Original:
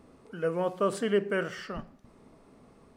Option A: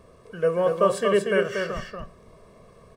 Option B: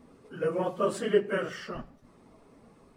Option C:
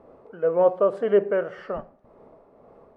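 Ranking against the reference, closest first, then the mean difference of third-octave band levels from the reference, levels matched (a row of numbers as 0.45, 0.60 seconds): B, A, C; 1.5, 3.5, 6.5 decibels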